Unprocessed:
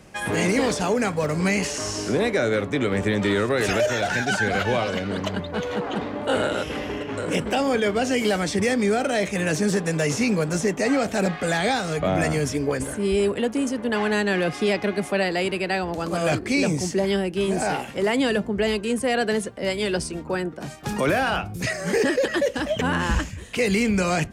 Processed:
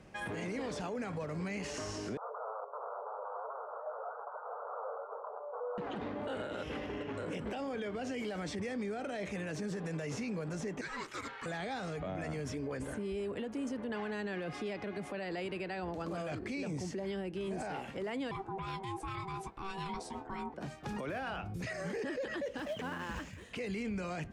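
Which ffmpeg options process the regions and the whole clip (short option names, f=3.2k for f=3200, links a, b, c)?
-filter_complex "[0:a]asettb=1/sr,asplit=3[a][b][c];[a]atrim=end=2.174[d];[b]atrim=start=2.17:end=5.78,asetpts=PTS-STARTPTS,afade=t=in:d=0.004:c=qsin,afade=t=out:st=3.606:d=0.004:c=qsin,acompressor=mode=upward:threshold=-26dB:ratio=2.5:attack=3.2:release=140:knee=2.83:detection=peak,aeval=exprs='0.0562*(abs(mod(val(0)/0.0562+3,4)-2)-1)':c=same,asuperpass=centerf=780:order=20:qfactor=0.82[e];[c]atrim=start=5.776[f];[d][e]acrossfade=d=0.004:c1=hsin:c2=qsin[g];[g][f]acrossfade=d=0.004:c1=qsin:c2=hsin,asettb=1/sr,asplit=3[h][i][j];[h]atrim=end=10.814[k];[i]atrim=start=10.81:end=11.46,asetpts=PTS-STARTPTS,afade=t=in:d=0.004:c=qsin,afade=t=out:st=0.646:d=0.004:c=qsin,highpass=1.3k,afreqshift=-300[l];[j]atrim=start=11.456[m];[k][l]acrossfade=d=0.004:c1=hsin:c2=qsin[n];[n][m]acrossfade=d=0.004:c1=qsin:c2=hsin,asettb=1/sr,asplit=3[o][p][q];[o]atrim=end=18.314[r];[p]atrim=start=18.31:end=20.54,asetpts=PTS-STARTPTS,afade=t=in:d=0.004:c=qsin,afade=t=out:st=2.226:d=0.004:c=qsin,bandreject=f=60:t=h:w=6,bandreject=f=120:t=h:w=6,aeval=exprs='val(0)*sin(2*PI*580*n/s)':c=same,asplit=2[s][t];[t]adelay=18,volume=-10dB[u];[s][u]amix=inputs=2:normalize=0,atrim=end_sample=98343[v];[q]atrim=start=20.536[w];[r][v]acrossfade=d=0.004:c1=hsin:c2=qsin[x];[x][w]acrossfade=d=0.004:c1=qsin:c2=hsin,asettb=1/sr,asplit=3[y][z][aa];[y]atrim=end=22.584[ab];[z]atrim=start=22.58:end=23.51,asetpts=PTS-STARTPTS,afade=t=in:d=0.004:c=qsin,afade=t=out:st=0.926:d=0.004:c=qsin,highpass=f=210:p=1,acrusher=bits=3:mode=log:mix=0:aa=0.000001[ac];[aa]atrim=start=23.506[ad];[ab][ac]acrossfade=d=0.004:c1=hsin:c2=qsin[ae];[ae][ad]acrossfade=d=0.004:c1=qsin:c2=hsin,aemphasis=mode=reproduction:type=50kf,alimiter=limit=-23.5dB:level=0:latency=1:release=76,volume=-7.5dB"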